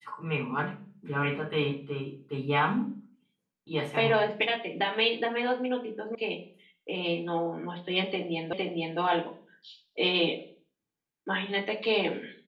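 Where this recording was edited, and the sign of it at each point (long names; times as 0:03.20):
0:06.15: cut off before it has died away
0:08.53: the same again, the last 0.46 s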